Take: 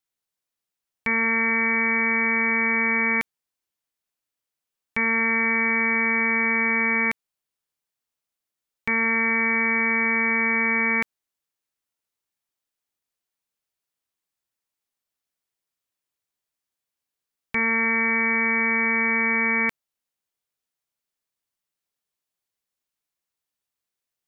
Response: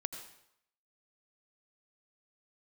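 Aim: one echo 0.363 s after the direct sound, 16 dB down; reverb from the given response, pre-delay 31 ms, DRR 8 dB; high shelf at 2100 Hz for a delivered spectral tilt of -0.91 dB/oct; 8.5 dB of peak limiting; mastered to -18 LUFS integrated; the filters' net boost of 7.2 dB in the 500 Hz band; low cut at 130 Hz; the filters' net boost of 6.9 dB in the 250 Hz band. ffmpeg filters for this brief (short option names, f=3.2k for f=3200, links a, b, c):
-filter_complex "[0:a]highpass=130,equalizer=f=250:t=o:g=7,equalizer=f=500:t=o:g=6.5,highshelf=f=2.1k:g=-8.5,alimiter=limit=-20.5dB:level=0:latency=1,aecho=1:1:363:0.158,asplit=2[a][b];[1:a]atrim=start_sample=2205,adelay=31[c];[b][c]afir=irnorm=-1:irlink=0,volume=-8dB[d];[a][d]amix=inputs=2:normalize=0,volume=10.5dB"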